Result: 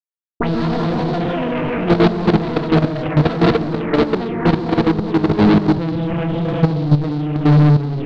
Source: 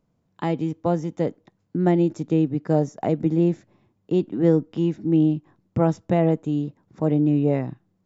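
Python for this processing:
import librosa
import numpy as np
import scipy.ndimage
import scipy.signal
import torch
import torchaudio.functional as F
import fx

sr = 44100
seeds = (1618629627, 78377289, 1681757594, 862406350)

p1 = fx.backlash(x, sr, play_db=-19.5)
p2 = fx.peak_eq(p1, sr, hz=3100.0, db=-10.0, octaves=3.0)
p3 = p2 + fx.echo_banded(p2, sr, ms=183, feedback_pct=59, hz=370.0, wet_db=-8, dry=0)
p4 = fx.rev_gated(p3, sr, seeds[0], gate_ms=440, shape='rising', drr_db=-4.0)
p5 = fx.echo_pitch(p4, sr, ms=102, semitones=6, count=2, db_per_echo=-3.0)
p6 = fx.leveller(p5, sr, passes=3)
p7 = 10.0 ** (-8.5 / 20.0) * np.tanh(p6 / 10.0 ** (-8.5 / 20.0))
p8 = fx.level_steps(p7, sr, step_db=11)
p9 = fx.notch(p8, sr, hz=570.0, q=12.0)
p10 = fx.rider(p9, sr, range_db=3, speed_s=2.0)
p11 = fx.peak_eq(p10, sr, hz=140.0, db=4.0, octaves=1.8)
p12 = fx.envelope_lowpass(p11, sr, base_hz=240.0, top_hz=4200.0, q=4.0, full_db=-15.0, direction='up')
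y = p12 * 10.0 ** (-1.0 / 20.0)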